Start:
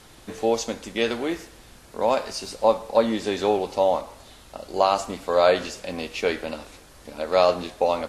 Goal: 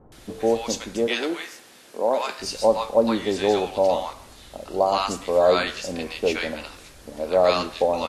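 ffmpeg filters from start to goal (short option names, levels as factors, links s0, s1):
-filter_complex "[0:a]asettb=1/sr,asplit=3[s0][s1][s2];[s0]atrim=end=1.074[s3];[s1]atrim=start=1.07:end=2.4,asetpts=PTS-STARTPTS,afade=t=in:d=0.004:c=qsin,afade=t=out:st=1.326:d=0.004:c=qsin,highpass=290[s4];[s2]atrim=start=2.396[s5];[s3][s4]acrossfade=d=0.004:c1=hsin:c2=qsin[s6];[s6][s5]acrossfade=d=0.004:c1=qsin:c2=hsin,acrossover=split=930[s7][s8];[s8]adelay=120[s9];[s7][s9]amix=inputs=2:normalize=0,volume=1.26"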